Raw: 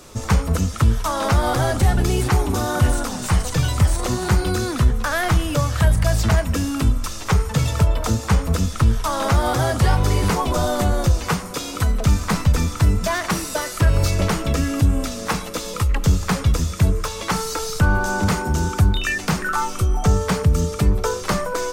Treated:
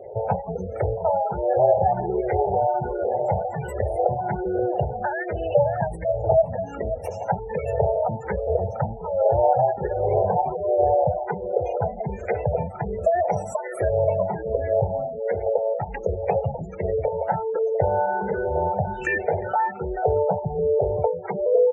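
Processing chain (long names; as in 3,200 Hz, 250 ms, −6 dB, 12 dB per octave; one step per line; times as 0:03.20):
flat-topped bell 550 Hz +13.5 dB
downward compressor 2 to 1, threshold −18 dBFS, peak gain reduction 7 dB
phaser with its sweep stopped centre 1,100 Hz, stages 6
mains hum 50 Hz, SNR 29 dB
in parallel at −9.5 dB: sample-and-hold swept by an LFO 25×, swing 60% 3.1 Hz
on the sum: high-pass filter 120 Hz 12 dB per octave
single-tap delay 530 ms −8 dB
gate on every frequency bin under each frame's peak −20 dB strong
frequency shifter mixed with the dry sound +1.3 Hz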